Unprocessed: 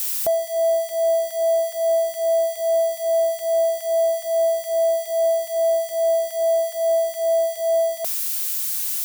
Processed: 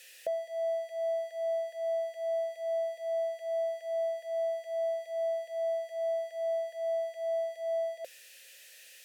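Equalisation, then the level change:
formant filter e
high-shelf EQ 5,100 Hz +4.5 dB
0.0 dB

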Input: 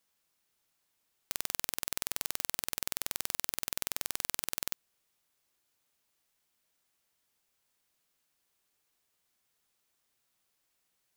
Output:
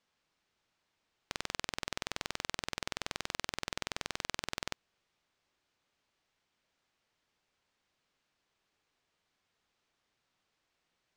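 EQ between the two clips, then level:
high-frequency loss of the air 130 metres
+4.0 dB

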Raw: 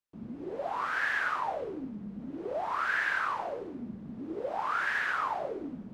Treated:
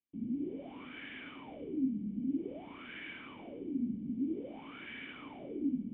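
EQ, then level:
formant resonators in series i
+8.5 dB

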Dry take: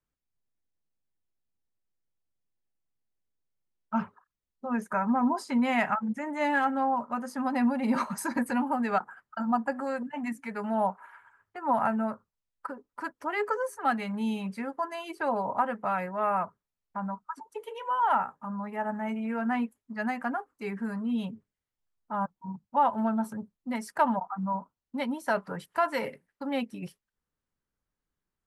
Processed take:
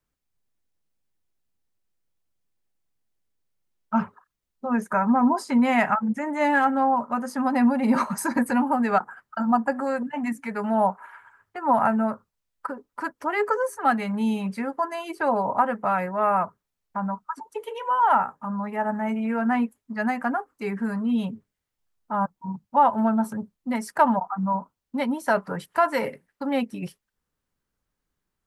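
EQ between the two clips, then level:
dynamic equaliser 3,300 Hz, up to −4 dB, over −48 dBFS, Q 1.2
+6.0 dB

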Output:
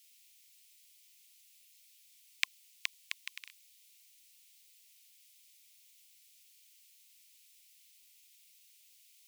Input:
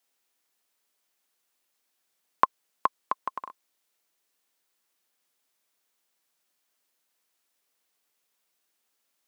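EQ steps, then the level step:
Butterworth high-pass 2,200 Hz 48 dB per octave
+14.0 dB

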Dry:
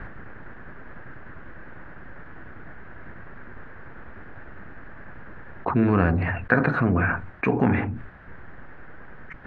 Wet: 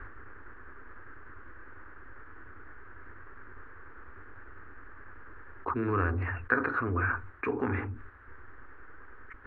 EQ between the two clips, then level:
drawn EQ curve 100 Hz 0 dB, 160 Hz −24 dB, 250 Hz −4 dB, 420 Hz +1 dB, 660 Hz −11 dB, 1,200 Hz +5 dB, 2,000 Hz −2 dB, 3,800 Hz −8 dB
−6.5 dB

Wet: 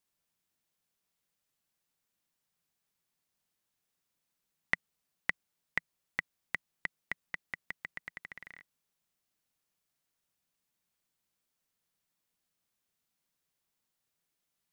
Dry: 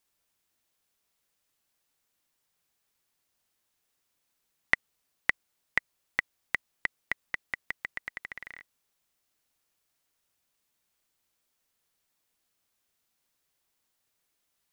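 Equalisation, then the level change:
parametric band 170 Hz +7.5 dB 0.75 octaves
−6.0 dB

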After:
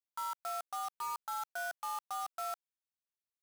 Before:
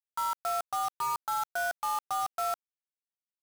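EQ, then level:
low-shelf EQ 340 Hz −11 dB
−6.5 dB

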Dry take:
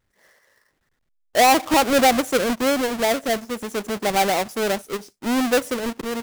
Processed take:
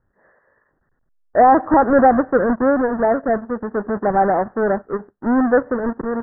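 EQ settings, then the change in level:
Butterworth low-pass 1,800 Hz 96 dB per octave
high-frequency loss of the air 320 metres
+5.5 dB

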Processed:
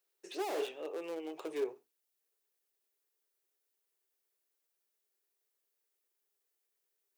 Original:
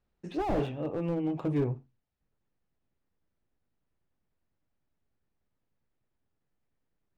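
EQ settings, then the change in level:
high-pass with resonance 400 Hz, resonance Q 4.9
first difference
+9.5 dB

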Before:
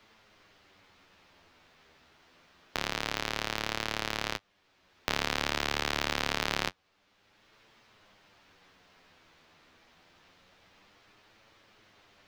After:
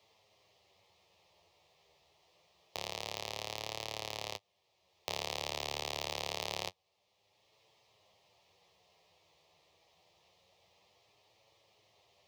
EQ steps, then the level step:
high-pass filter 85 Hz
phaser with its sweep stopped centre 620 Hz, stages 4
−3.5 dB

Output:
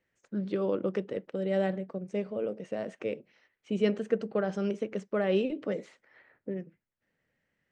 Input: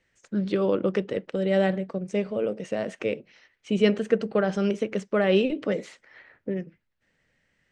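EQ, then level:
high-shelf EQ 2,100 Hz −9 dB
dynamic equaliser 7,100 Hz, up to +6 dB, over −52 dBFS, Q 0.81
low-shelf EQ 67 Hz −11.5 dB
−5.0 dB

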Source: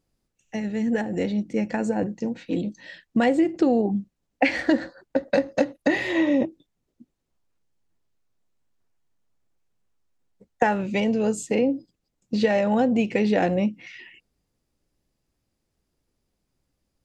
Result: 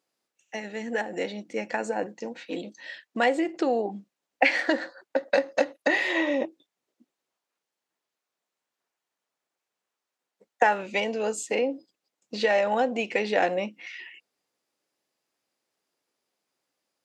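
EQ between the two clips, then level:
Bessel high-pass filter 650 Hz, order 2
high-shelf EQ 6,000 Hz −4.5 dB
+3.0 dB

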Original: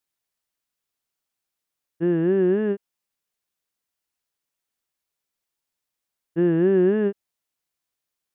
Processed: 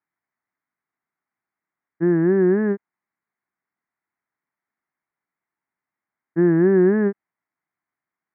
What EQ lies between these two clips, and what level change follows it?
high-pass filter 140 Hz
elliptic low-pass filter 2,100 Hz, stop band 40 dB
parametric band 510 Hz −11 dB 0.58 octaves
+6.5 dB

